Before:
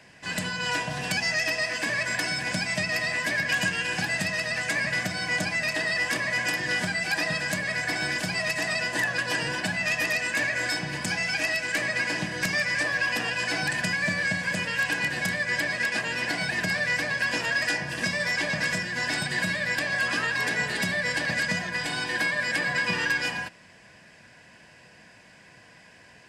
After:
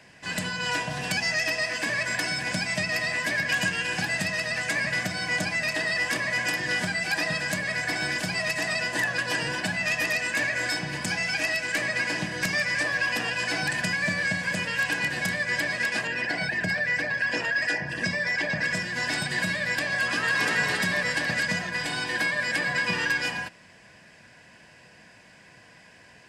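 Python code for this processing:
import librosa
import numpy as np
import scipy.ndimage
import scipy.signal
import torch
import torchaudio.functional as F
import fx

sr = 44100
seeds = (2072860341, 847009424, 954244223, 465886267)

y = fx.envelope_sharpen(x, sr, power=1.5, at=(16.07, 18.75))
y = fx.echo_throw(y, sr, start_s=19.96, length_s=0.51, ms=280, feedback_pct=60, wet_db=-2.0)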